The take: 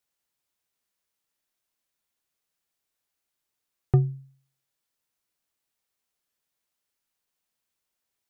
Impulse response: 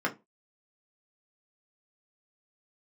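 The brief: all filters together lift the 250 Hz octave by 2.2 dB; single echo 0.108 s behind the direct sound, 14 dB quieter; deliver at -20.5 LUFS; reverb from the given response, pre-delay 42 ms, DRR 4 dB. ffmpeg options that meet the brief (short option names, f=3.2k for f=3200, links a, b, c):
-filter_complex "[0:a]equalizer=f=250:t=o:g=7,aecho=1:1:108:0.2,asplit=2[a][b];[1:a]atrim=start_sample=2205,adelay=42[c];[b][c]afir=irnorm=-1:irlink=0,volume=-13.5dB[d];[a][d]amix=inputs=2:normalize=0,volume=3.5dB"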